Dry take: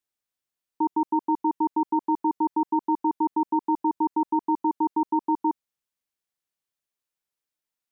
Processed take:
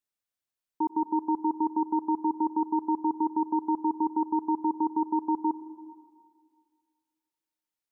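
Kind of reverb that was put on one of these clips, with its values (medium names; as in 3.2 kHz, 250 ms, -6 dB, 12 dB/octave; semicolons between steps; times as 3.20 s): plate-style reverb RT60 2 s, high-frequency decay 0.85×, pre-delay 85 ms, DRR 13 dB; trim -3.5 dB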